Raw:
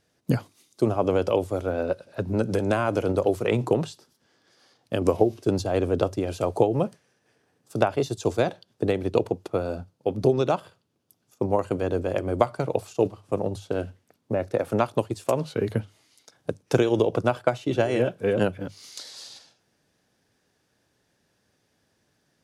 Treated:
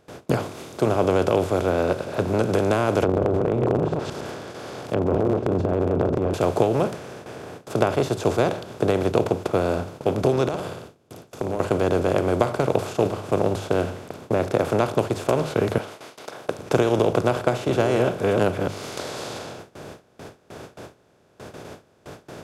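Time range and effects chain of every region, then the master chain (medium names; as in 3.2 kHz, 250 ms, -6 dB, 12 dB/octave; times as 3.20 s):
3.02–6.34 s: chunks repeated in reverse 108 ms, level -8.5 dB + low-pass that closes with the level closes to 330 Hz, closed at -22 dBFS + transient shaper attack -6 dB, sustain +11 dB
10.48–11.60 s: peaking EQ 1.2 kHz -7 dB 2.3 oct + compression 5:1, threshold -37 dBFS + flutter echo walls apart 9.6 m, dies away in 0.34 s
15.78–16.59 s: high-pass 690 Hz + peaking EQ 7.2 kHz -6 dB 0.31 oct
whole clip: spectral levelling over time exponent 0.4; gate with hold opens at -24 dBFS; trim -3.5 dB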